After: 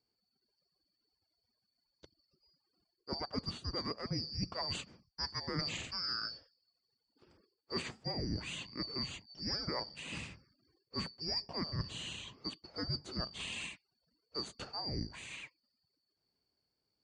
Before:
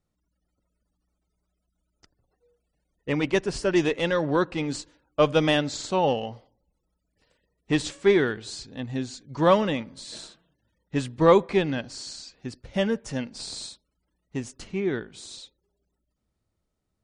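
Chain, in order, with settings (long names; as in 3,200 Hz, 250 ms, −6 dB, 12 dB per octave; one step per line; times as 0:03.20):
band-splitting scrambler in four parts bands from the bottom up 2341
high-pass filter 100 Hz 12 dB per octave
spectral tilt −4.5 dB per octave
reversed playback
downward compressor 16 to 1, threshold −37 dBFS, peak gain reduction 19 dB
reversed playback
level +2.5 dB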